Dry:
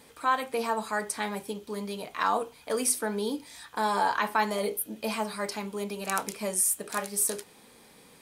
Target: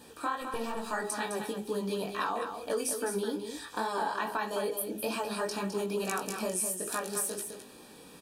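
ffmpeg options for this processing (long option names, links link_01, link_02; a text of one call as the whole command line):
ffmpeg -i in.wav -filter_complex "[0:a]equalizer=frequency=330:width_type=o:width=0.82:gain=5,bandreject=frequency=208.7:width_type=h:width=4,bandreject=frequency=417.4:width_type=h:width=4,bandreject=frequency=626.1:width_type=h:width=4,bandreject=frequency=834.8:width_type=h:width=4,acompressor=threshold=-31dB:ratio=6,asettb=1/sr,asplit=3[link_01][link_02][link_03];[link_01]atrim=end=0.414[link_04];[link_02]atrim=start=0.41:end=0.91,asetpts=PTS-STARTPTS,afade=type=in:duration=0.004:curve=qsin,afade=type=out:start_time=0.496:duration=0.004:curve=qsin,aeval=exprs='clip(val(0),-1,0.0075)':channel_layout=same[link_05];[link_03]atrim=start=0.906[link_06];[link_04][link_05]acrossfade=duration=0.004:curve1=hsin:curve2=qsin[link_07];[link_07][link_06]acrossfade=duration=0.004:curve1=qsin:curve2=hsin,flanger=delay=16:depth=5.9:speed=2.3,asuperstop=centerf=2100:order=20:qfactor=6.8,aecho=1:1:209:0.422,volume=4.5dB" out.wav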